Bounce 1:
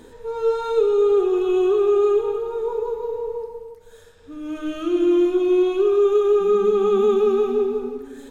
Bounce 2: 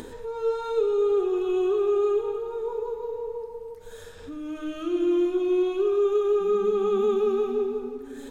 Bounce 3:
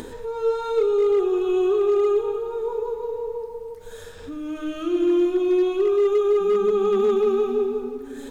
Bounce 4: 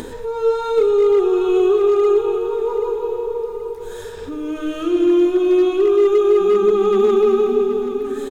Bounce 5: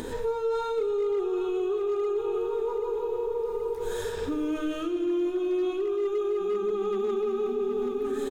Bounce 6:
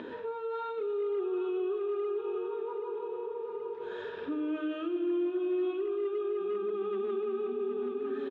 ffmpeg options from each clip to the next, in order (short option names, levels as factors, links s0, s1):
-af "acompressor=mode=upward:threshold=0.0562:ratio=2.5,volume=0.531"
-af "acrusher=bits=11:mix=0:aa=0.000001,asoftclip=type=hard:threshold=0.133,volume=1.5"
-af "aecho=1:1:778|1556|2334|3112:0.282|0.107|0.0407|0.0155,volume=1.78"
-af "areverse,acompressor=threshold=0.0708:ratio=6,areverse,alimiter=limit=0.0841:level=0:latency=1:release=162"
-af "highpass=300,equalizer=f=470:t=q:w=4:g=-8,equalizer=f=810:t=q:w=4:g=-9,equalizer=f=1200:t=q:w=4:g=-4,equalizer=f=2100:t=q:w=4:g=-8,lowpass=f=2800:w=0.5412,lowpass=f=2800:w=1.3066"